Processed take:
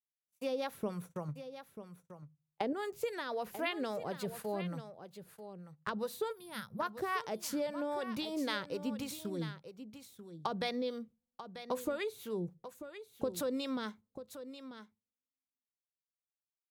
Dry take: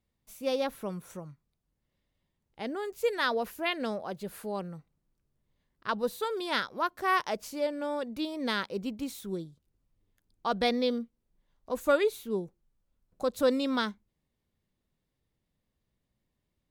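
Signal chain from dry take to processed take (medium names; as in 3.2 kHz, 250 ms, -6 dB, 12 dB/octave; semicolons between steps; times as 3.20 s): high-pass 78 Hz; gate -45 dBFS, range -45 dB; 1.28–2.73 s: peaking EQ 560 Hz +9.5 dB 2.6 oct; 6.32–6.80 s: time-frequency box 230–9200 Hz -20 dB; in parallel at +3 dB: peak limiter -22.5 dBFS, peak gain reduction 10 dB; on the sum: compression, threshold -30 dBFS, peak gain reduction 13.5 dB; overload inside the chain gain 20 dB; harmonic tremolo 3.7 Hz, depth 70%, crossover 560 Hz; delay 940 ms -11.5 dB; on a send at -23.5 dB: reverberation RT60 0.30 s, pre-delay 3 ms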